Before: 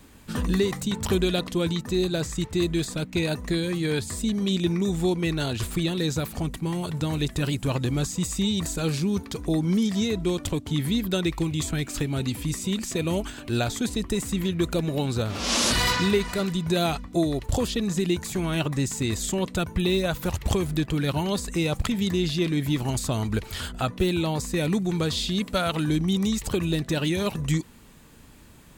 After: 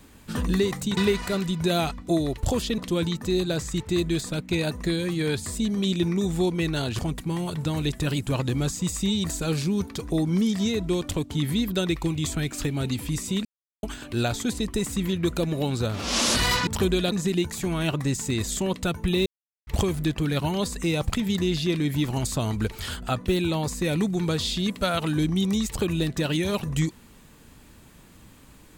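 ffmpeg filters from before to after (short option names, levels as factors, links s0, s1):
-filter_complex "[0:a]asplit=10[s0][s1][s2][s3][s4][s5][s6][s7][s8][s9];[s0]atrim=end=0.972[s10];[s1]atrim=start=16.028:end=17.842[s11];[s2]atrim=start=1.418:end=5.632[s12];[s3]atrim=start=6.348:end=12.81,asetpts=PTS-STARTPTS,afade=t=out:st=6.458:d=0.004:c=hsin[s13];[s4]atrim=start=12.81:end=13.19,asetpts=PTS-STARTPTS,volume=0[s14];[s5]atrim=start=13.19:end=16.032,asetpts=PTS-STARTPTS,afade=t=in:d=0.004:c=hsin[s15];[s6]atrim=start=0.968:end=1.422[s16];[s7]atrim=start=17.838:end=19.98,asetpts=PTS-STARTPTS,afade=t=out:st=2.138:d=0.004:c=hsin[s17];[s8]atrim=start=19.98:end=20.39,asetpts=PTS-STARTPTS,volume=0[s18];[s9]atrim=start=20.39,asetpts=PTS-STARTPTS,afade=t=in:d=0.004:c=hsin[s19];[s10][s11]acrossfade=d=0.004:c1=hsin:c2=hsin[s20];[s20][s12]acrossfade=d=0.004:c1=hsin:c2=hsin[s21];[s13][s14][s15]concat=n=3:v=0:a=1[s22];[s21][s22]acrossfade=d=0.004:c1=hsin:c2=hsin[s23];[s23][s16]acrossfade=d=0.004:c1=hsin:c2=hsin[s24];[s17][s18][s19]concat=n=3:v=0:a=1[s25];[s24][s25]acrossfade=d=0.004:c1=hsin:c2=hsin"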